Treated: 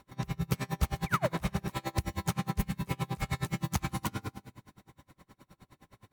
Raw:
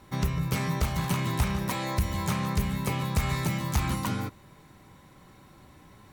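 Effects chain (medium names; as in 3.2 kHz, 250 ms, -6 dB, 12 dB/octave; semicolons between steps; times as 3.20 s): painted sound fall, 1.06–1.29 s, 460–2500 Hz -25 dBFS; on a send at -8 dB: reverberation RT60 1.5 s, pre-delay 48 ms; on the sum: logarithmic tremolo 9.6 Hz, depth 32 dB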